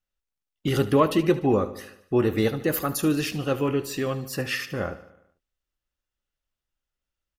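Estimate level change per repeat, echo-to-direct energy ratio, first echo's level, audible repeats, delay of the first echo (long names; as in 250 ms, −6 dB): −5.0 dB, −14.0 dB, −15.5 dB, 4, 74 ms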